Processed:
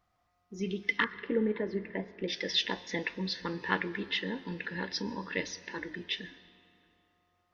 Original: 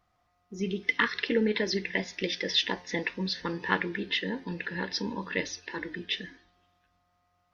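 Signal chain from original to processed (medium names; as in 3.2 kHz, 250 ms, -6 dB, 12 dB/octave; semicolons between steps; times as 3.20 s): 1.04–2.28 s: low-pass 1.2 kHz 12 dB/octave; algorithmic reverb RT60 3 s, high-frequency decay 0.65×, pre-delay 75 ms, DRR 18 dB; trim -3 dB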